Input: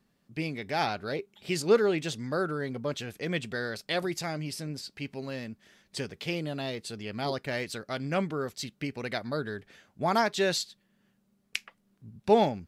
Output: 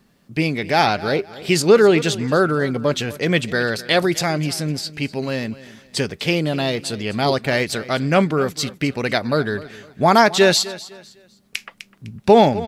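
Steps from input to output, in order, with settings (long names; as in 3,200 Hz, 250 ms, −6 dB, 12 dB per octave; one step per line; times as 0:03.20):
repeating echo 253 ms, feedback 31%, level −18 dB
boost into a limiter +14 dB
level −1 dB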